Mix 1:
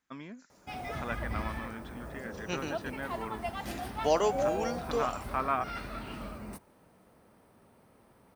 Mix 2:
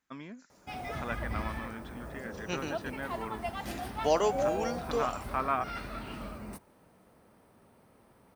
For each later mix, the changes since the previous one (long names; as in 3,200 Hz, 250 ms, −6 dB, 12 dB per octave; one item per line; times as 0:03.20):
nothing changed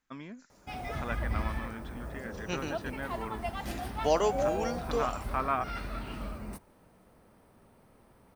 master: remove high-pass filter 93 Hz 6 dB per octave